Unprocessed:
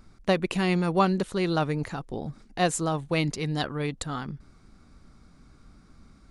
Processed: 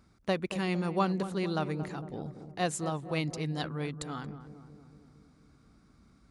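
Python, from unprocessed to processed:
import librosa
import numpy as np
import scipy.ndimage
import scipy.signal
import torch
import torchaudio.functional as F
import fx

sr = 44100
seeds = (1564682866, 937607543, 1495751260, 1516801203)

y = scipy.signal.sosfilt(scipy.signal.butter(2, 57.0, 'highpass', fs=sr, output='sos'), x)
y = fx.echo_filtered(y, sr, ms=228, feedback_pct=66, hz=1000.0, wet_db=-10.5)
y = y * 10.0 ** (-6.5 / 20.0)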